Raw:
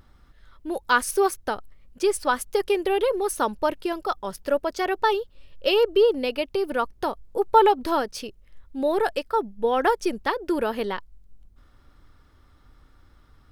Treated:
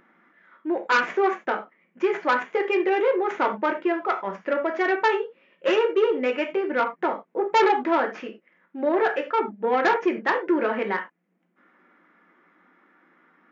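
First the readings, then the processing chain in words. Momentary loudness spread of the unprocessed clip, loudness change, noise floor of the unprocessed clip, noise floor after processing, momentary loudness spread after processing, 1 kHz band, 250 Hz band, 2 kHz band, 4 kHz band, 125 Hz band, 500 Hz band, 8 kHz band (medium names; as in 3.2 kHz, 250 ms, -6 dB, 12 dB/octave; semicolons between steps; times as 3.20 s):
11 LU, +0.5 dB, -56 dBFS, -70 dBFS, 9 LU, 0.0 dB, +2.0 dB, +4.0 dB, -4.0 dB, no reading, -0.5 dB, under -10 dB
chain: tracing distortion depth 0.16 ms; resonant high shelf 3.1 kHz -14 dB, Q 3; gated-style reverb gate 120 ms falling, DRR 2.5 dB; saturation -13.5 dBFS, distortion -12 dB; FFT band-pass 170–7300 Hz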